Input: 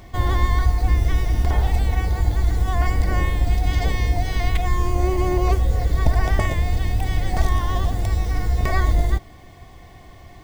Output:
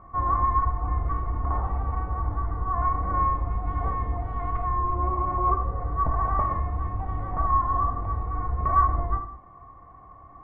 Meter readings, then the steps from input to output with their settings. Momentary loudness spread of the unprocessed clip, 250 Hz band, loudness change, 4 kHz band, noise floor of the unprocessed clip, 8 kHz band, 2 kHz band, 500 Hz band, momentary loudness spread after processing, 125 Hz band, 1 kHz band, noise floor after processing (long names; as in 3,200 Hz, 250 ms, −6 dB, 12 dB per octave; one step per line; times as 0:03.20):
3 LU, −8.5 dB, −4.5 dB, below −30 dB, −44 dBFS, below −40 dB, −14.0 dB, −8.5 dB, 7 LU, −8.5 dB, +5.0 dB, −48 dBFS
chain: transistor ladder low-pass 1,200 Hz, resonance 85%
reverb whose tail is shaped and stops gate 240 ms falling, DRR 4.5 dB
level +2.5 dB